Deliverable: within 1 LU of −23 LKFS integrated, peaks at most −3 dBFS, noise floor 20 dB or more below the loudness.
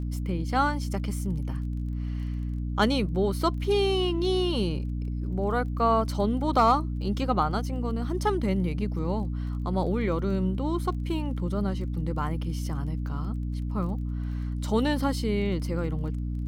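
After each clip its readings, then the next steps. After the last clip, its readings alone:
crackle rate 19 per second; mains hum 60 Hz; hum harmonics up to 300 Hz; level of the hum −28 dBFS; integrated loudness −28.0 LKFS; sample peak −10.5 dBFS; target loudness −23.0 LKFS
→ click removal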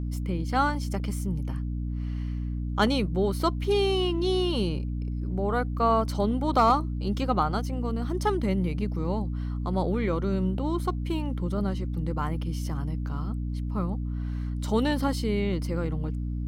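crackle rate 0.18 per second; mains hum 60 Hz; hum harmonics up to 300 Hz; level of the hum −28 dBFS
→ mains-hum notches 60/120/180/240/300 Hz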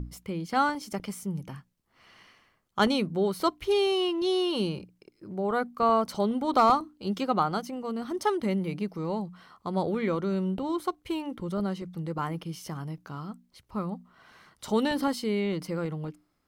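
mains hum none found; integrated loudness −29.0 LKFS; sample peak −12.0 dBFS; target loudness −23.0 LKFS
→ level +6 dB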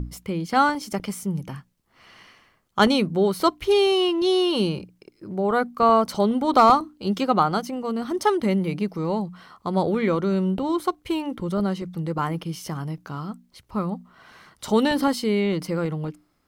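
integrated loudness −23.0 LKFS; sample peak −6.0 dBFS; background noise floor −65 dBFS

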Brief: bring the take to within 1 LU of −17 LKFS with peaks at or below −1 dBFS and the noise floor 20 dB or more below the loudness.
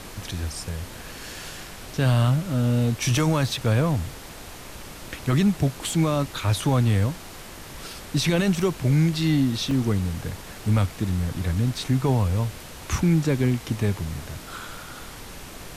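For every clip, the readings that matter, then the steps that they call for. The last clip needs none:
number of dropouts 2; longest dropout 1.9 ms; background noise floor −40 dBFS; target noise floor −44 dBFS; integrated loudness −24.0 LKFS; sample peak −11.0 dBFS; target loudness −17.0 LKFS
→ repair the gap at 0:03.57/0:09.71, 1.9 ms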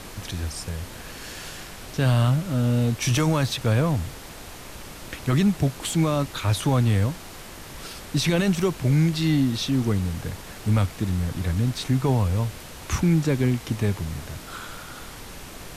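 number of dropouts 0; background noise floor −40 dBFS; target noise floor −44 dBFS
→ noise reduction from a noise print 6 dB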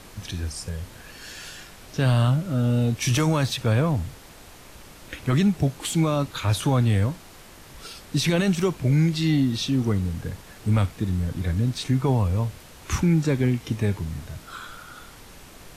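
background noise floor −46 dBFS; integrated loudness −24.0 LKFS; sample peak −11.0 dBFS; target loudness −17.0 LKFS
→ level +7 dB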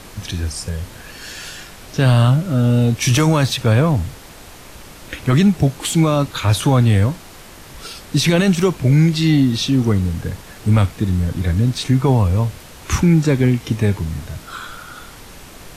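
integrated loudness −17.0 LKFS; sample peak −4.0 dBFS; background noise floor −39 dBFS

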